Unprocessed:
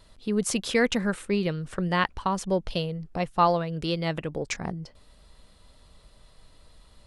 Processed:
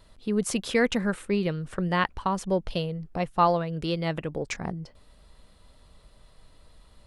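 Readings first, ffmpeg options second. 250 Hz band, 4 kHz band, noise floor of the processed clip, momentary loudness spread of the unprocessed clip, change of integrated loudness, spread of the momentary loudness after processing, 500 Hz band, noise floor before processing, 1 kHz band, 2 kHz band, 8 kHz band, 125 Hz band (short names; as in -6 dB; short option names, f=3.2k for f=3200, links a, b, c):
0.0 dB, -2.5 dB, -57 dBFS, 9 LU, -0.5 dB, 9 LU, 0.0 dB, -57 dBFS, 0.0 dB, -1.0 dB, -3.0 dB, 0.0 dB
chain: -af "equalizer=f=5.7k:t=o:w=1.9:g=-3.5"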